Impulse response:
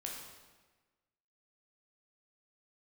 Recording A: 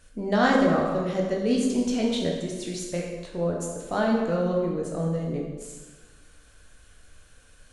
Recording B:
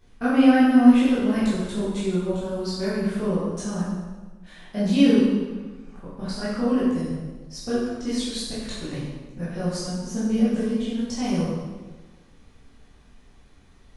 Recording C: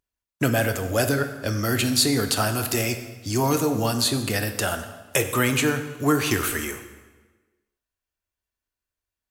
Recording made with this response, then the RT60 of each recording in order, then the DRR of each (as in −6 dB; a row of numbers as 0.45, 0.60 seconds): A; 1.3, 1.3, 1.3 seconds; −2.0, −10.5, 7.0 decibels